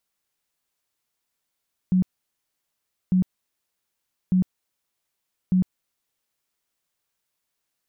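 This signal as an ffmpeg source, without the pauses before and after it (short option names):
-f lavfi -i "aevalsrc='0.168*sin(2*PI*184*mod(t,1.2))*lt(mod(t,1.2),19/184)':d=4.8:s=44100"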